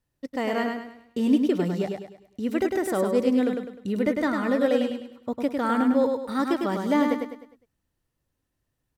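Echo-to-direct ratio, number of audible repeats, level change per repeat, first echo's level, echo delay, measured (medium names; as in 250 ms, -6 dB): -4.0 dB, 4, -8.0 dB, -4.5 dB, 102 ms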